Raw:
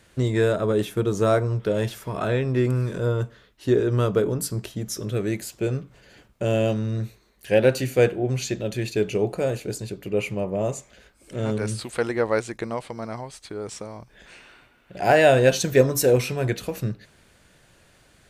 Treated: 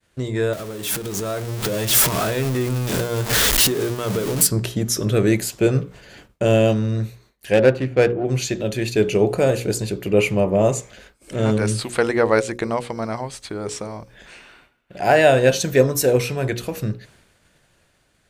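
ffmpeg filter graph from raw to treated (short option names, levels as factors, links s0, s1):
-filter_complex "[0:a]asettb=1/sr,asplit=3[s0][s1][s2];[s0]atrim=end=0.534[s3];[s1]atrim=start=0.53:end=4.47,asetpts=PTS-STARTPTS,afade=t=in:d=0.004:c=qsin,afade=t=out:st=3.936:d=0.004:c=qsin,aeval=exprs='val(0)+0.5*0.0596*sgn(val(0))':c=same,acompressor=threshold=0.0355:ratio=6:attack=3.2:release=140:knee=1:detection=peak,highshelf=f=4100:g=10[s4];[s2]atrim=start=4.466[s5];[s3][s4]acrossfade=d=0.004:c1=hsin:c2=qsin[s6];[s6][s5]acrossfade=d=0.004:c1=qsin:c2=hsin,asettb=1/sr,asplit=3[s7][s8][s9];[s7]atrim=end=7.534[s10];[s8]atrim=start=7.53:end=8.25,asetpts=PTS-STARTPTS,afade=t=in:d=0.004:c=qsin,afade=t=out:st=0.716:d=0.004:c=qsin,equalizer=f=5600:t=o:w=0.64:g=-4.5,adynamicsmooth=sensitivity=2.5:basefreq=1200[s11];[s9]atrim=start=8.246[s12];[s10][s11]acrossfade=d=0.004:c1=hsin:c2=qsin[s13];[s13][s12]acrossfade=d=0.004:c1=qsin:c2=hsin,bandreject=f=60:t=h:w=6,bandreject=f=120:t=h:w=6,bandreject=f=180:t=h:w=6,bandreject=f=240:t=h:w=6,bandreject=f=300:t=h:w=6,bandreject=f=360:t=h:w=6,bandreject=f=420:t=h:w=6,bandreject=f=480:t=h:w=6,bandreject=f=540:t=h:w=6,agate=range=0.0224:threshold=0.00282:ratio=3:detection=peak,dynaudnorm=f=220:g=11:m=3.76,volume=0.891"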